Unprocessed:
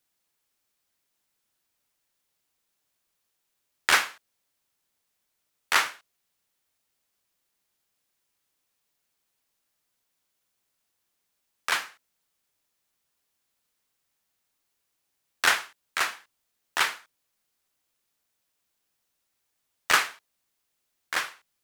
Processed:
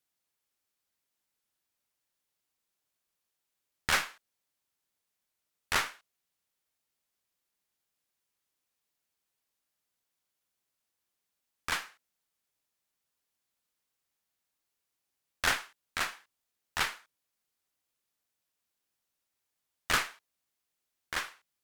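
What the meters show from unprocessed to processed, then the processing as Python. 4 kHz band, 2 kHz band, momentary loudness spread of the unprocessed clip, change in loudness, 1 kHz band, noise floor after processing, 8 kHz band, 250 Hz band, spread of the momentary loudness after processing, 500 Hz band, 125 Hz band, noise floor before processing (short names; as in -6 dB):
-6.0 dB, -7.0 dB, 14 LU, -6.5 dB, -7.0 dB, -85 dBFS, -6.0 dB, -0.5 dB, 13 LU, -4.5 dB, n/a, -79 dBFS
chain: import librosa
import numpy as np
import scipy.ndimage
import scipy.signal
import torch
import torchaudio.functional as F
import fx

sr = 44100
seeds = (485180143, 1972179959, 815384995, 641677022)

y = fx.tube_stage(x, sr, drive_db=16.0, bias=0.75)
y = F.gain(torch.from_numpy(y), -2.0).numpy()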